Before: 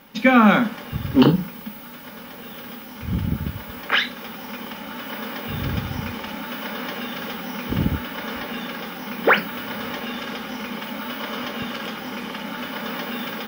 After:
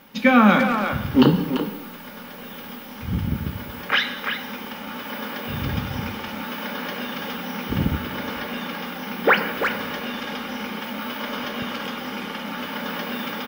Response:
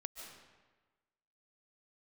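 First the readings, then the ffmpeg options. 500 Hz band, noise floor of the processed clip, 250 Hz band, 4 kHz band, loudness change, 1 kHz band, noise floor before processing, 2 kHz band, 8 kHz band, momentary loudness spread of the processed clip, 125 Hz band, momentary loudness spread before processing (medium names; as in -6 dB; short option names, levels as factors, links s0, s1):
+0.5 dB, -38 dBFS, 0.0 dB, 0.0 dB, 0.0 dB, +0.5 dB, -39 dBFS, +0.5 dB, -0.5 dB, 15 LU, -0.5 dB, 17 LU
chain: -filter_complex "[0:a]asplit=2[s0][s1];[s1]adelay=340,highpass=300,lowpass=3400,asoftclip=type=hard:threshold=0.316,volume=0.501[s2];[s0][s2]amix=inputs=2:normalize=0,asplit=2[s3][s4];[1:a]atrim=start_sample=2205,asetrate=66150,aresample=44100[s5];[s4][s5]afir=irnorm=-1:irlink=0,volume=1.41[s6];[s3][s6]amix=inputs=2:normalize=0,volume=0.596"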